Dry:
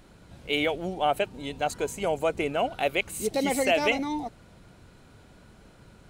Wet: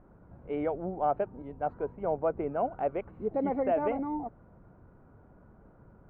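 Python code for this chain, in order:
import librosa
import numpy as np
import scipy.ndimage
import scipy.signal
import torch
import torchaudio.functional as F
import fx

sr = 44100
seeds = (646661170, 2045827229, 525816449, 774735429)

y = scipy.signal.sosfilt(scipy.signal.butter(4, 1300.0, 'lowpass', fs=sr, output='sos'), x)
y = fx.band_widen(y, sr, depth_pct=40, at=(1.42, 2.74))
y = y * 10.0 ** (-3.0 / 20.0)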